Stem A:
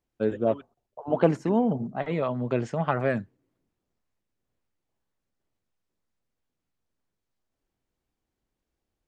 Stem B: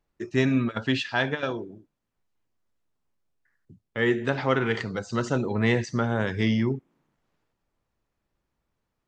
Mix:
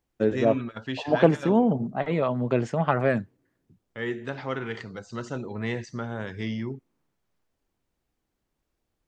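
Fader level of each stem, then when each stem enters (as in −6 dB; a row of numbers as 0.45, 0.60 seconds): +2.5, −7.5 decibels; 0.00, 0.00 seconds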